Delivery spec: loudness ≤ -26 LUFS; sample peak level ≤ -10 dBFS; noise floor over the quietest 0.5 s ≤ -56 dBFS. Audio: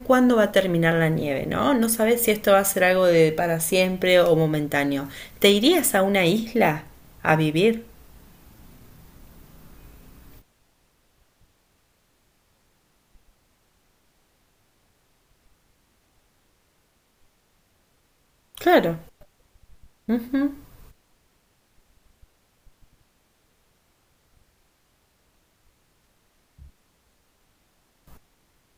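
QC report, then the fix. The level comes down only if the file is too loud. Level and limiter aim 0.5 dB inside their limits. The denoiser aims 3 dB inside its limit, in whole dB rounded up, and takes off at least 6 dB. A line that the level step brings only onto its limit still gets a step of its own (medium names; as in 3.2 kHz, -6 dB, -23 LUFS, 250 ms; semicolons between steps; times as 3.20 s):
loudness -20.5 LUFS: fail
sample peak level -3.5 dBFS: fail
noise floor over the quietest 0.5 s -65 dBFS: pass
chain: trim -6 dB; peak limiter -10.5 dBFS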